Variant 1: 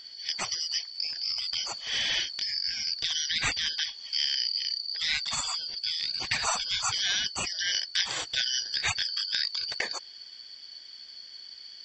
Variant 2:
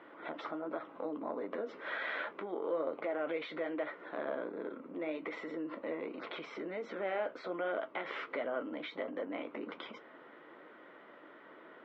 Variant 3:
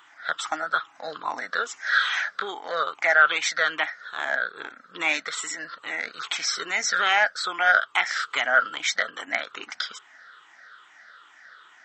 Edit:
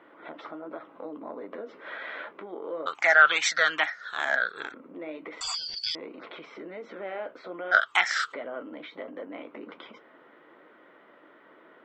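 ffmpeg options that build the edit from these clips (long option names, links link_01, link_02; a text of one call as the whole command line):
ffmpeg -i take0.wav -i take1.wav -i take2.wav -filter_complex "[2:a]asplit=2[link_01][link_02];[1:a]asplit=4[link_03][link_04][link_05][link_06];[link_03]atrim=end=2.862[link_07];[link_01]atrim=start=2.858:end=4.742[link_08];[link_04]atrim=start=4.738:end=5.412[link_09];[0:a]atrim=start=5.408:end=5.952[link_10];[link_05]atrim=start=5.948:end=7.73[link_11];[link_02]atrim=start=7.71:end=8.34[link_12];[link_06]atrim=start=8.32[link_13];[link_07][link_08]acrossfade=duration=0.004:curve1=hsin:curve2=hsin[link_14];[link_14][link_09]acrossfade=duration=0.004:curve1=hsin:curve2=hsin[link_15];[link_15][link_10]acrossfade=duration=0.004:curve1=hsin:curve2=hsin[link_16];[link_16][link_11]acrossfade=duration=0.004:curve1=hsin:curve2=hsin[link_17];[link_17][link_12]acrossfade=duration=0.02:curve1=tri:curve2=tri[link_18];[link_18][link_13]acrossfade=duration=0.02:curve1=tri:curve2=tri" out.wav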